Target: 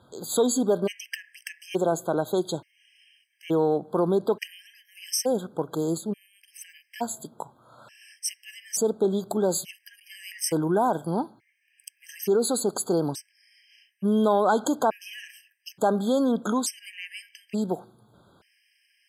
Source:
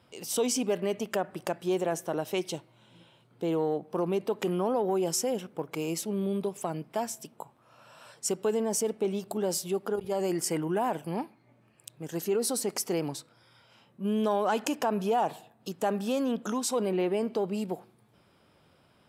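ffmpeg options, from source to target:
-filter_complex "[0:a]asettb=1/sr,asplit=3[a][b][c];[a]atrim=end=5.974[d];[b]atrim=start=5.97:end=6.48,asetpts=PTS-STARTPTS,afade=t=in:d=0.004:c=qsin,afade=t=out:st=0.506:d=0.004:c=qsin,acrossover=split=350[e][f];[f]acompressor=threshold=-41dB:ratio=5[g];[e][g]amix=inputs=2:normalize=0[h];[c]atrim=start=6.476[i];[d][h]acrossfade=d=0.004:c1=hsin:c2=qsin[j];[j][i]acrossfade=d=0.004:c1=qsin:c2=hsin,afftfilt=real='re*gt(sin(2*PI*0.57*pts/sr)*(1-2*mod(floor(b*sr/1024/1600),2)),0)':imag='im*gt(sin(2*PI*0.57*pts/sr)*(1-2*mod(floor(b*sr/1024/1600),2)),0)':win_size=1024:overlap=0.75,volume=6dB"

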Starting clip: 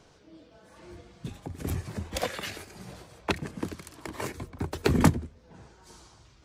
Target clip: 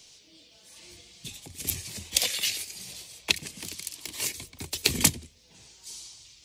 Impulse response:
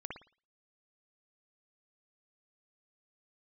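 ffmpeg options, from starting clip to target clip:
-filter_complex "[0:a]asettb=1/sr,asplit=3[a][b][c];[a]atrim=end=3.624[d];[b]atrim=start=3.62:end=4.21,asetpts=PTS-STARTPTS,afade=t=in:d=0.004:c=qsin,afade=t=out:st=0.586:d=0.004:c=qsin,asoftclip=type=hard:threshold=-31dB[e];[c]atrim=start=4.206[f];[d][e]acrossfade=d=0.004:c1=hsin:c2=qsin[g];[g][f]acrossfade=d=0.004:c1=qsin:c2=hsin,aexciter=amount=11.1:drive=4:freq=2.2k,volume=-9dB"

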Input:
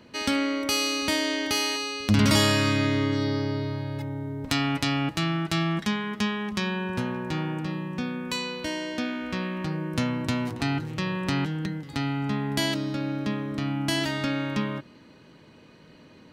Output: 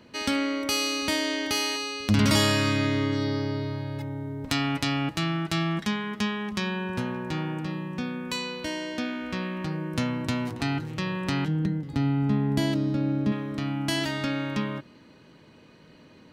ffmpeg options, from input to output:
-filter_complex "[0:a]asettb=1/sr,asplit=3[a][b][c];[a]atrim=end=11.484[d];[b]atrim=start=11.48:end=13.32,asetpts=PTS-STARTPTS,afade=t=in:d=0.004:c=qsin,afade=t=out:st=1.836:d=0.004:c=qsin,tiltshelf=f=670:g=6.5[e];[c]atrim=start=13.316[f];[d][e]acrossfade=d=0.004:c1=hsin:c2=qsin[g];[g][f]acrossfade=d=0.004:c1=qsin:c2=hsin,volume=-1dB"

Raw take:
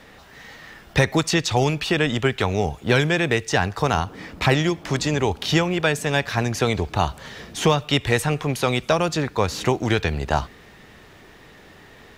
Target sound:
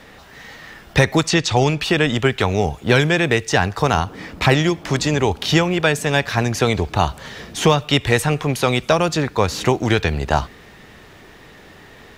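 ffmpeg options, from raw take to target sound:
-filter_complex "[0:a]asettb=1/sr,asplit=3[a][b][c];[a]atrim=end=1.274[d];[b]atrim=start=1.27:end=1.8,asetpts=PTS-STARTPTS,afade=t=in:d=0.004:c=qsin,afade=t=out:st=0.526:d=0.004:c=qsin,lowpass=8.6k[e];[c]atrim=start=1.796[f];[d][e]acrossfade=d=0.004:c1=hsin:c2=qsin[g];[g][f]acrossfade=d=0.004:c1=qsin:c2=hsin,volume=3.5dB"

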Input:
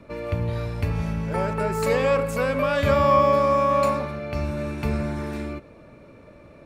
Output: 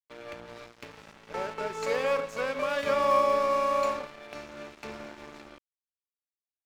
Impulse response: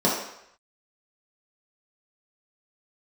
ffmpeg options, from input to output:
-filter_complex "[0:a]lowpass=f=6.6k:t=q:w=4.2,acrossover=split=260 4800:gain=0.0631 1 0.178[a][b][c];[a][b][c]amix=inputs=3:normalize=0,aeval=exprs='sgn(val(0))*max(abs(val(0))-0.0188,0)':c=same,volume=-4.5dB"

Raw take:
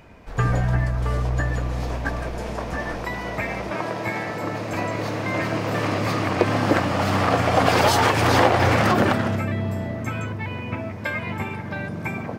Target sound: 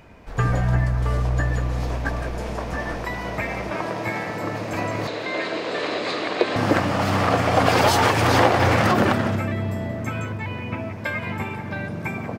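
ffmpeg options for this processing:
-filter_complex "[0:a]asettb=1/sr,asplit=3[a][b][c];[a]atrim=end=5.074[d];[b]atrim=start=5.07:end=6.56,asetpts=PTS-STARTPTS,afade=t=in:d=0.004:c=qsin,afade=t=out:st=1.486:d=0.004:c=qsin,highpass=370,equalizer=f=410:t=q:w=4:g=5,equalizer=f=850:t=q:w=4:g=-4,equalizer=f=1.2k:t=q:w=4:g=-4,equalizer=f=3.9k:t=q:w=4:g=10,equalizer=f=5.8k:t=q:w=4:g=-7,lowpass=f=7.8k:w=0.5412,lowpass=f=7.8k:w=1.3066[e];[c]atrim=start=6.556[f];[d][e]acrossfade=d=0.004:c1=hsin:c2=qsin[g];[g][f]acrossfade=d=0.004:c1=qsin:c2=hsin,aecho=1:1:179:0.2"

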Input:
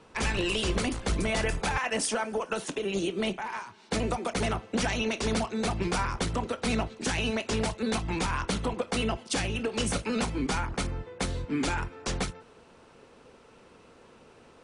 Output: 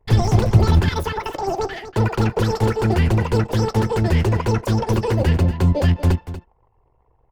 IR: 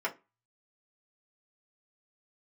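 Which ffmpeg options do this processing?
-af "anlmdn=0.0158,agate=range=-8dB:threshold=-55dB:ratio=16:detection=peak,aemphasis=mode=reproduction:type=riaa,aecho=1:1:476:0.237,asetrate=88200,aresample=44100,volume=1.5dB"

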